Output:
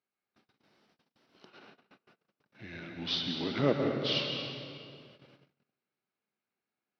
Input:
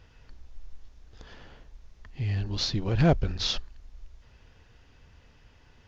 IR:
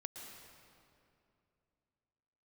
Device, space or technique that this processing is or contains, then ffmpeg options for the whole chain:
slowed and reverbed: -filter_complex "[0:a]asetrate=37044,aresample=44100[s0];[1:a]atrim=start_sample=2205[s1];[s0][s1]afir=irnorm=-1:irlink=0,agate=range=0.0447:threshold=0.00447:ratio=16:detection=peak,highpass=f=180:w=0.5412,highpass=f=180:w=1.3066,volume=1.19"

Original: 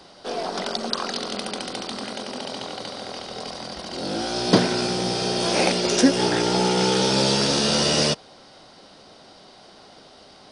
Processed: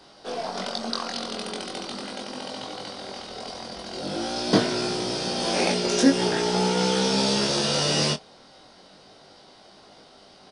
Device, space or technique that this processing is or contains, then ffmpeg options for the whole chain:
double-tracked vocal: -filter_complex "[0:a]asplit=2[s0][s1];[s1]adelay=26,volume=0.211[s2];[s0][s2]amix=inputs=2:normalize=0,flanger=delay=19.5:depth=2.3:speed=0.41"

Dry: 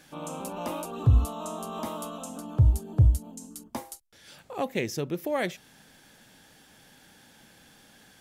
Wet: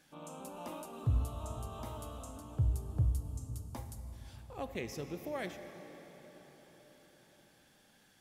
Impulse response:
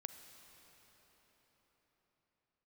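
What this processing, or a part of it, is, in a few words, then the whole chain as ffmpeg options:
cathedral: -filter_complex "[1:a]atrim=start_sample=2205[s0];[0:a][s0]afir=irnorm=-1:irlink=0,volume=0.473"

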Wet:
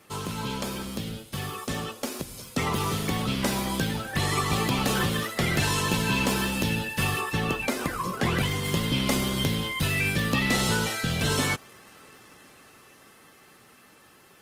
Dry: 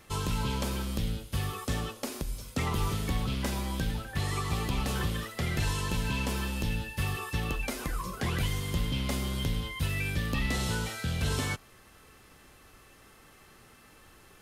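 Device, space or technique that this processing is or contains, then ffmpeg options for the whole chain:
video call: -filter_complex "[0:a]asettb=1/sr,asplit=3[s0][s1][s2];[s0]atrim=end=7.214[s3];[s1]atrim=start=7.21:end=8.65,asetpts=PTS-STARTPTS,afade=t=in:d=0.004:c=qsin,afade=t=out:st=1.436:d=0.004:c=qsin,highshelf=f=3600:g=-5.5[s4];[s2]atrim=start=8.646[s5];[s3][s4]acrossfade=d=0.004:c1=hsin:c2=qsin[s6];[s6][s5]acrossfade=d=0.004:c1=qsin:c2=hsin,highpass=140,dynaudnorm=f=430:g=13:m=2.11,volume=1.26" -ar 48000 -c:a libopus -b:a 20k

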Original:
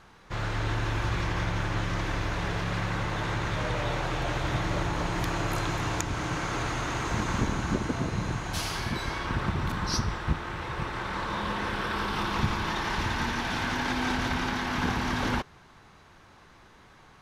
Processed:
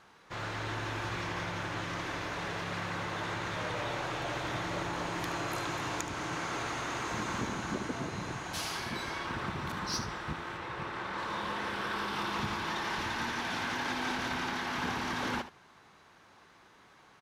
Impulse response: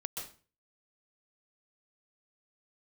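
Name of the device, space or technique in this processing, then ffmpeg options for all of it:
parallel distortion: -filter_complex "[0:a]highpass=f=250:p=1,asplit=2[s0][s1];[s1]asoftclip=type=hard:threshold=0.0447,volume=0.596[s2];[s0][s2]amix=inputs=2:normalize=0,asettb=1/sr,asplit=3[s3][s4][s5];[s3]atrim=end=10.574[s6];[s4]atrim=start=10.57:end=11.18,asetpts=PTS-STARTPTS,afade=t=in:d=0.004:c=qsin,afade=t=out:st=0.606:d=0.004:c=qsin,highshelf=f=5600:g=-7[s7];[s5]atrim=start=11.176[s8];[s6][s7]acrossfade=d=0.004:c1=hsin:c2=qsin[s9];[s9][s8]acrossfade=d=0.004:c1=qsin:c2=hsin,aecho=1:1:74:0.237,volume=0.422"

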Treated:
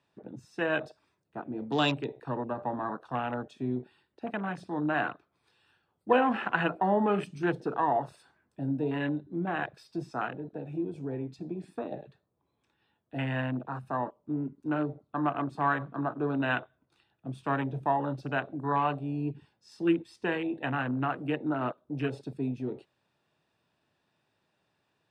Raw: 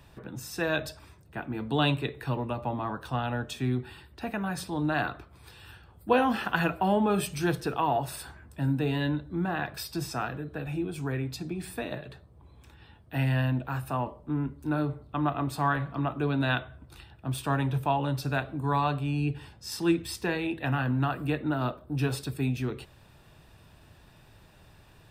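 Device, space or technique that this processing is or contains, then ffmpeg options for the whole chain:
over-cleaned archive recording: -af "highpass=200,lowpass=6900,afwtdn=0.0158"

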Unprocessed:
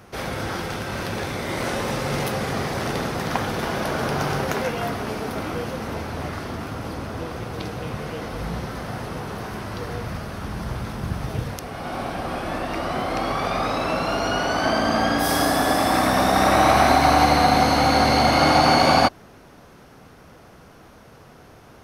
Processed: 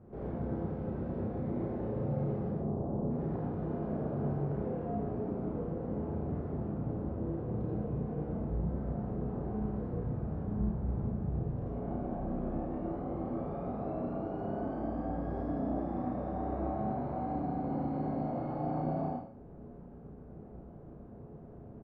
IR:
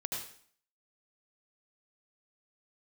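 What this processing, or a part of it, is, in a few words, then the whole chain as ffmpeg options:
television next door: -filter_complex "[0:a]asplit=3[s0][s1][s2];[s0]afade=t=out:st=2.5:d=0.02[s3];[s1]lowpass=f=1100:w=0.5412,lowpass=f=1100:w=1.3066,afade=t=in:st=2.5:d=0.02,afade=t=out:st=3.09:d=0.02[s4];[s2]afade=t=in:st=3.09:d=0.02[s5];[s3][s4][s5]amix=inputs=3:normalize=0,acompressor=threshold=0.0282:ratio=3,lowpass=450[s6];[1:a]atrim=start_sample=2205[s7];[s6][s7]afir=irnorm=-1:irlink=0,asplit=2[s8][s9];[s9]adelay=33,volume=0.794[s10];[s8][s10]amix=inputs=2:normalize=0,volume=0.631"

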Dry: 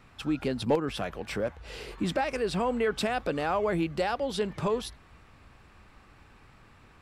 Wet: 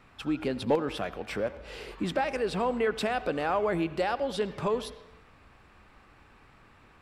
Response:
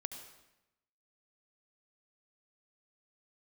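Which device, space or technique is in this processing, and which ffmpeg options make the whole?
filtered reverb send: -filter_complex "[0:a]asplit=2[s0][s1];[s1]highpass=190,lowpass=4200[s2];[1:a]atrim=start_sample=2205[s3];[s2][s3]afir=irnorm=-1:irlink=0,volume=0.631[s4];[s0][s4]amix=inputs=2:normalize=0,volume=0.708"

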